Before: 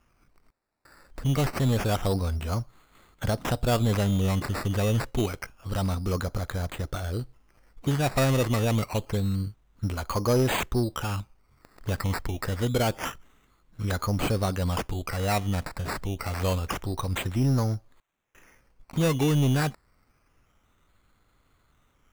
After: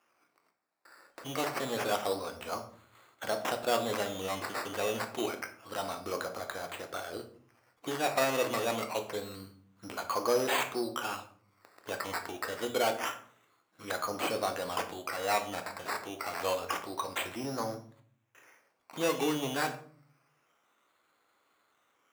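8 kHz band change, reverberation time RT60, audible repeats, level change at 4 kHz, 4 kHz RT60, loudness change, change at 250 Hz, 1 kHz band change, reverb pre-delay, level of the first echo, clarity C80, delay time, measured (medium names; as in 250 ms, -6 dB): -3.0 dB, 0.50 s, no echo, -2.5 dB, 0.35 s, -6.0 dB, -10.5 dB, -1.0 dB, 3 ms, no echo, 14.5 dB, no echo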